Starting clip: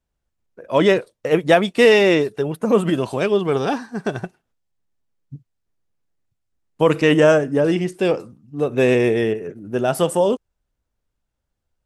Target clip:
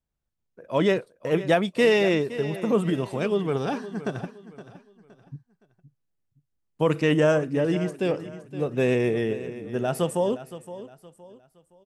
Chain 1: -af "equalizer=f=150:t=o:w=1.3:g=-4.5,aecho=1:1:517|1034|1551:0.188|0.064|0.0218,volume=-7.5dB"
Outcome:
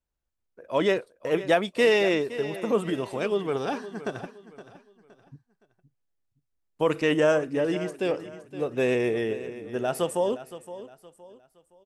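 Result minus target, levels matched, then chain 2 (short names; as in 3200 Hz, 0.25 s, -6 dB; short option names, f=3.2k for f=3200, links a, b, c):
125 Hz band -6.5 dB
-af "equalizer=f=150:t=o:w=1.3:g=4.5,aecho=1:1:517|1034|1551:0.188|0.064|0.0218,volume=-7.5dB"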